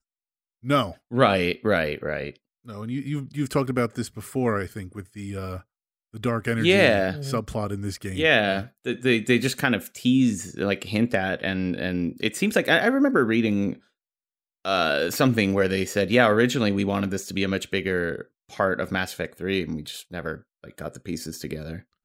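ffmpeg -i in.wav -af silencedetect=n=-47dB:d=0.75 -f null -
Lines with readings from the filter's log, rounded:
silence_start: 13.79
silence_end: 14.65 | silence_duration: 0.86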